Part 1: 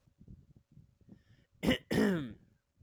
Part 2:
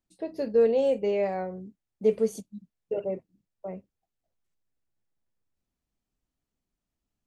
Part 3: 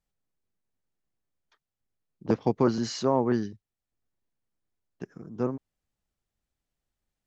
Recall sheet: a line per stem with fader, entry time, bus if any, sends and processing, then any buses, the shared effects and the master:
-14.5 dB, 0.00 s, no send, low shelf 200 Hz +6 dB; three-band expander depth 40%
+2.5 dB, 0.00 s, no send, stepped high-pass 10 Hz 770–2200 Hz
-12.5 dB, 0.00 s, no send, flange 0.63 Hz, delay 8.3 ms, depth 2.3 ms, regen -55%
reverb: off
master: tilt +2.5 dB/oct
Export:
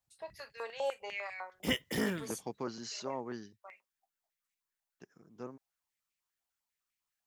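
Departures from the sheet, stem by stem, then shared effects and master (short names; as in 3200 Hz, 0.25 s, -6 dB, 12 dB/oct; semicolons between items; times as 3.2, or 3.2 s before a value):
stem 1 -14.5 dB -> -4.0 dB; stem 2 +2.5 dB -> -7.0 dB; stem 3: missing flange 0.63 Hz, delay 8.3 ms, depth 2.3 ms, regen -55%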